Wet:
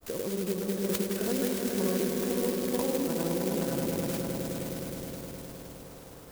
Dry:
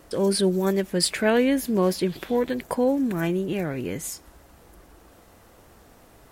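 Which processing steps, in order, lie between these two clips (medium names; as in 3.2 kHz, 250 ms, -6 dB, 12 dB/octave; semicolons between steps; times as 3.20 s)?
compression 2:1, threshold -36 dBFS, peak gain reduction 11 dB; granulator, pitch spread up and down by 0 st; echo with a slow build-up 104 ms, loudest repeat 5, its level -7.5 dB; sampling jitter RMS 0.11 ms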